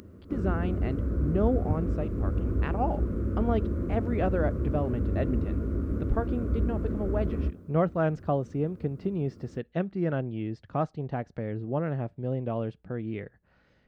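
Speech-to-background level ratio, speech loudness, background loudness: -1.0 dB, -32.0 LUFS, -31.0 LUFS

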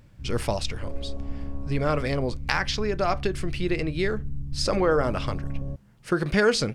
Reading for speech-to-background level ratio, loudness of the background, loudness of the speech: 10.5 dB, -37.0 LUFS, -26.5 LUFS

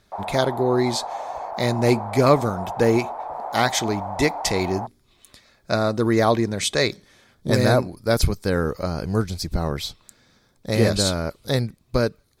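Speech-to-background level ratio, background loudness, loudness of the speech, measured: 9.0 dB, -31.5 LUFS, -22.5 LUFS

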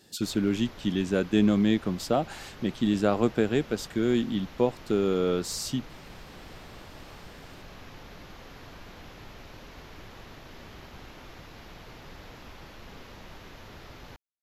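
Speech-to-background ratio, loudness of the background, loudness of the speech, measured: 20.0 dB, -47.0 LUFS, -27.0 LUFS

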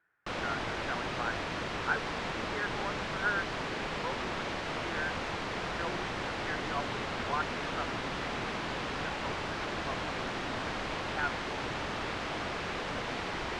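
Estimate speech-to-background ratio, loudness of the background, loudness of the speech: -4.5 dB, -35.5 LUFS, -40.0 LUFS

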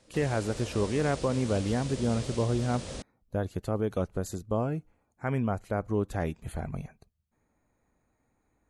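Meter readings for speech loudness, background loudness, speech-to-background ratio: -31.0 LUFS, -40.0 LUFS, 9.0 dB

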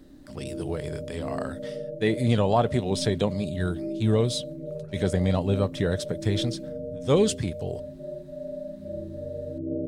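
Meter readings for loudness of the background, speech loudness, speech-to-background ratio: -36.0 LUFS, -27.0 LUFS, 9.0 dB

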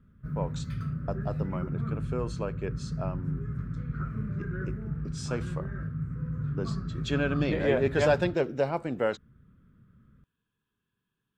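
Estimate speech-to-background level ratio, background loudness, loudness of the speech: 3.0 dB, -34.5 LUFS, -31.5 LUFS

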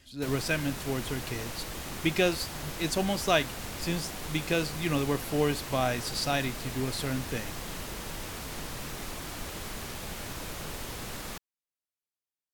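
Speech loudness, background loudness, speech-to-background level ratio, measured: -31.0 LUFS, -38.0 LUFS, 7.0 dB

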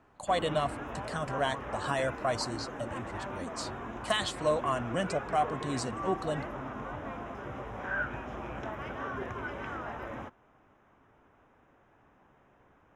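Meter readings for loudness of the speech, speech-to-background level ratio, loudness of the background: -33.0 LUFS, 6.0 dB, -39.0 LUFS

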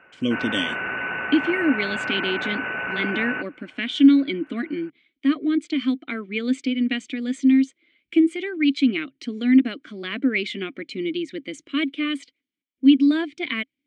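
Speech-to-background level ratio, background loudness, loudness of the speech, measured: 4.5 dB, -27.5 LUFS, -23.0 LUFS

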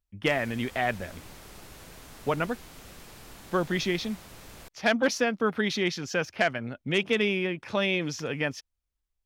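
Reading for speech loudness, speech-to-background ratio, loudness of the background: -28.5 LUFS, 19.0 dB, -47.5 LUFS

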